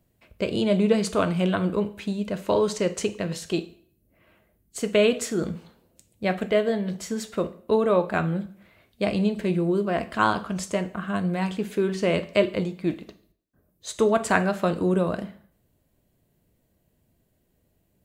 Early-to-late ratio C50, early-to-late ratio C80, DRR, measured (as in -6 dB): 15.5 dB, 19.5 dB, 10.0 dB